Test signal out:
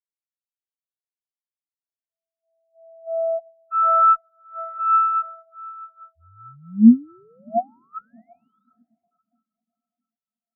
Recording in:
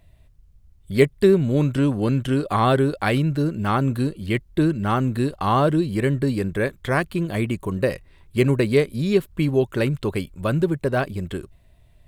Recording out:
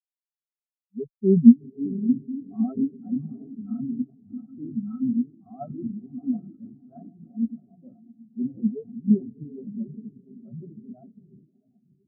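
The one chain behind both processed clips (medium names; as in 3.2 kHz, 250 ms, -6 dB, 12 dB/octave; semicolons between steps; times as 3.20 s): distance through air 76 m; on a send: echo that smears into a reverb 708 ms, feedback 71%, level -4 dB; on the sum: transient shaper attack -3 dB, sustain +7 dB; treble shelf 5.2 kHz -11.5 dB; small resonant body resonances 230/700/1300 Hz, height 13 dB, ringing for 70 ms; Chebyshev shaper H 3 -26 dB, 6 -17 dB, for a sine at 1 dBFS; spectral contrast expander 4:1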